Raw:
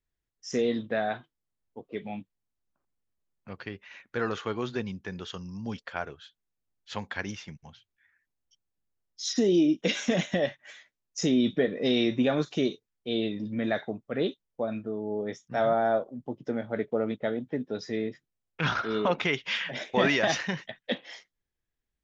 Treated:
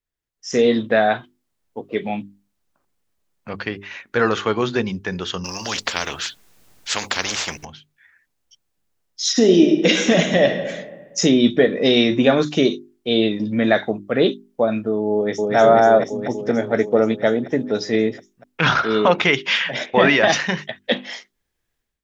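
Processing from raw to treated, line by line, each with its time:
5.44–7.65 s: spectrum-flattening compressor 4:1
9.29–10.60 s: reverb throw, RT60 1.4 s, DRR 5.5 dB
15.14–15.55 s: echo throw 240 ms, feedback 80%, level -1 dB
19.85–20.31 s: low-pass 2.7 kHz -> 4.3 kHz
whole clip: bass shelf 170 Hz -4 dB; hum notches 50/100/150/200/250/300/350/400 Hz; level rider gain up to 13.5 dB

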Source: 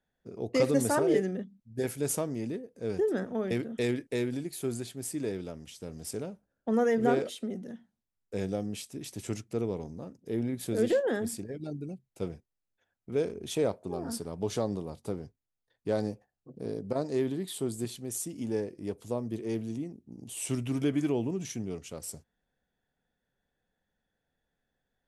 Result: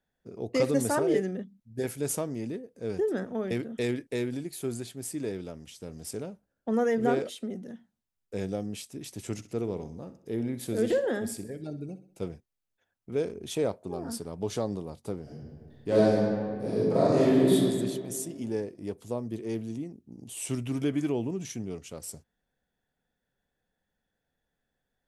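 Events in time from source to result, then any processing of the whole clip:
9.32–12.24 s: feedback delay 64 ms, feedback 47%, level -14 dB
15.22–17.52 s: reverb throw, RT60 2.1 s, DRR -9.5 dB

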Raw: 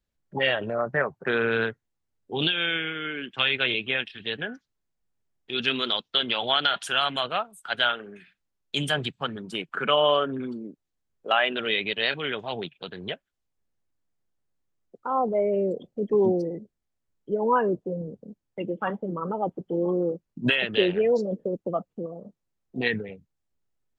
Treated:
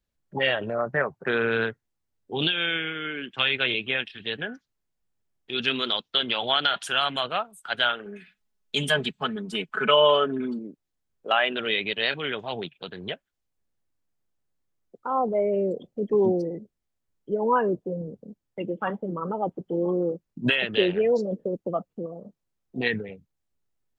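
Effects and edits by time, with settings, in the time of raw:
8.05–10.59 s: comb 4.7 ms, depth 80%

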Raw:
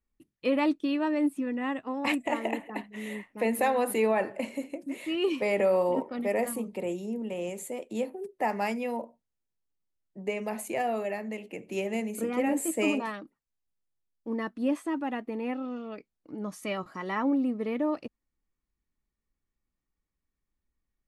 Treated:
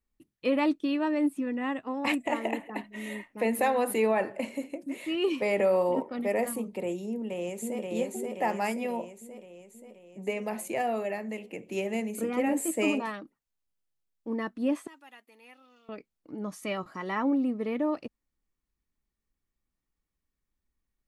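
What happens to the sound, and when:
2.84–3.28 s: comb 3.2 ms, depth 59%
7.09–7.90 s: echo throw 530 ms, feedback 60%, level -2 dB
14.87–15.89 s: differentiator

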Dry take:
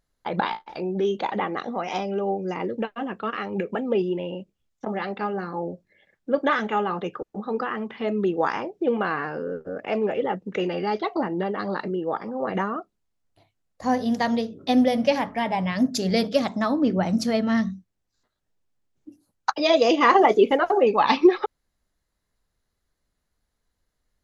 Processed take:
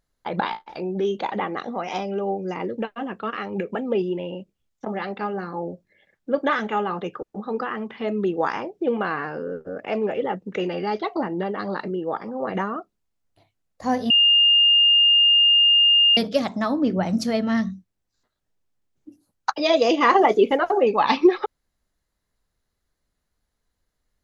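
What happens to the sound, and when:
14.10–16.17 s: bleep 2.82 kHz -12.5 dBFS

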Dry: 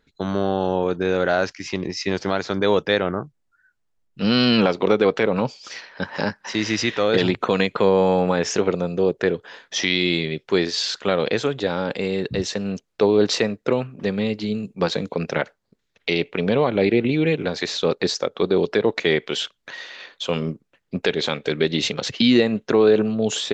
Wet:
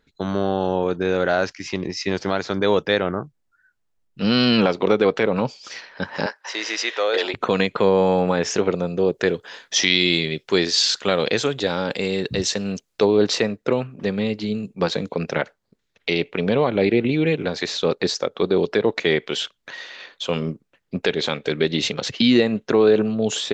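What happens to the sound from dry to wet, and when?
6.26–7.34 s: high-pass 430 Hz 24 dB/octave
9.13–13.05 s: treble shelf 3.7 kHz +9.5 dB

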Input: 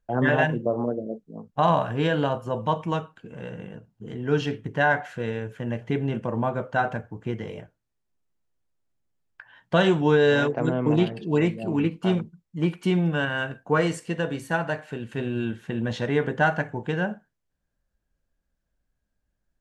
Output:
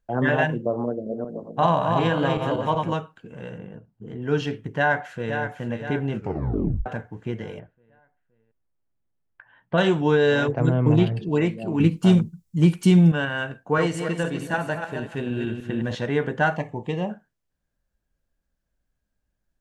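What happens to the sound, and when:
0.87–2.94 s: backward echo that repeats 188 ms, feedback 46%, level -3 dB
3.58–4.22 s: treble shelf 2.3 kHz -10.5 dB
4.76–5.39 s: echo throw 520 ms, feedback 50%, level -8 dB
6.14 s: tape stop 0.72 s
7.59–9.78 s: distance through air 450 m
10.48–11.29 s: peaking EQ 110 Hz +14.5 dB 0.69 oct
11.80–13.12 s: tone controls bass +11 dB, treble +14 dB
13.63–15.95 s: backward echo that repeats 152 ms, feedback 42%, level -6 dB
16.56–17.10 s: Butterworth band-stop 1.5 kHz, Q 2.3

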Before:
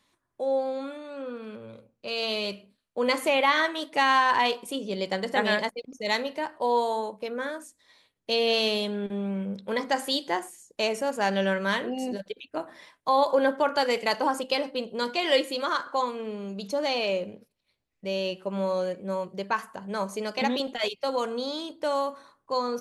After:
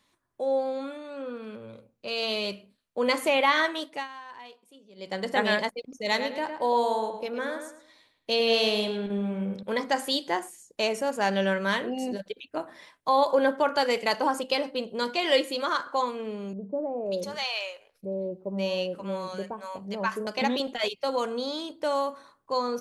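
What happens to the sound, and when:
3.77–5.26 s: dip -22 dB, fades 0.31 s
5.93–9.63 s: filtered feedback delay 109 ms, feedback 32%, low-pass 4.2 kHz, level -7.5 dB
16.53–20.27 s: bands offset in time lows, highs 530 ms, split 750 Hz

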